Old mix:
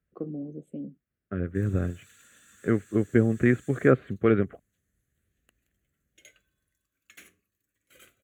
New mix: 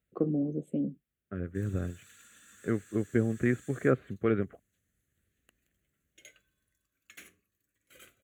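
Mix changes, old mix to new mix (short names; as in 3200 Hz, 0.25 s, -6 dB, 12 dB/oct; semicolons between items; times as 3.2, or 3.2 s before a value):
first voice +6.0 dB; second voice -6.0 dB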